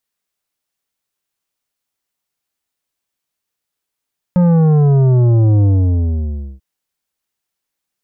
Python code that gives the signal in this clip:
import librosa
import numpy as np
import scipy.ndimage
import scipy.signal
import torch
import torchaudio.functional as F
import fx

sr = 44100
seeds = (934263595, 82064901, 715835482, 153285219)

y = fx.sub_drop(sr, level_db=-9, start_hz=180.0, length_s=2.24, drive_db=10, fade_s=0.97, end_hz=65.0)